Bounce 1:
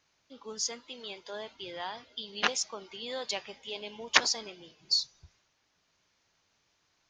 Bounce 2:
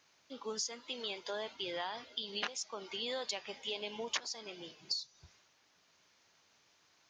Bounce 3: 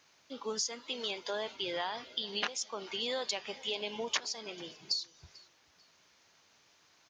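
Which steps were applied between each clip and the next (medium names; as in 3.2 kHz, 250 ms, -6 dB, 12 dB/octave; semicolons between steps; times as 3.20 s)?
high-pass 190 Hz 6 dB/octave; compression 10:1, threshold -39 dBFS, peak gain reduction 23 dB; trim +4 dB
feedback delay 442 ms, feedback 30%, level -23.5 dB; trim +3.5 dB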